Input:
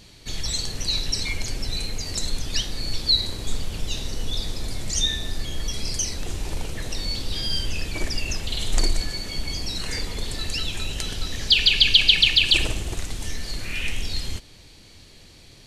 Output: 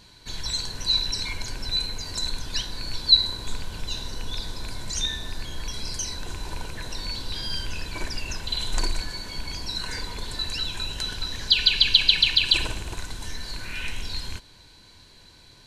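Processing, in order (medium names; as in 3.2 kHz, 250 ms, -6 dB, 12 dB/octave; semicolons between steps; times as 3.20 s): rattle on loud lows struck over -25 dBFS, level -23 dBFS; small resonant body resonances 1/1.5/4 kHz, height 14 dB, ringing for 30 ms; trim -5 dB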